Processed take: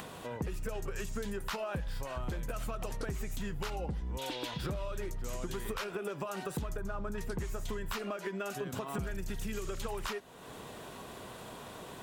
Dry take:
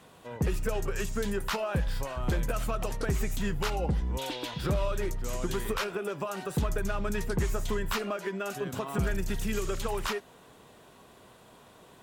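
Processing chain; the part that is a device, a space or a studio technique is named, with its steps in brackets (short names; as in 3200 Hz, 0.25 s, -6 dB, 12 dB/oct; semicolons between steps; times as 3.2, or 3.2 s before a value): upward and downward compression (upward compressor, threshold -37 dBFS; compressor 5:1, threshold -34 dBFS, peak gain reduction 10 dB); 6.77–7.18 resonant high shelf 1700 Hz -7 dB, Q 1.5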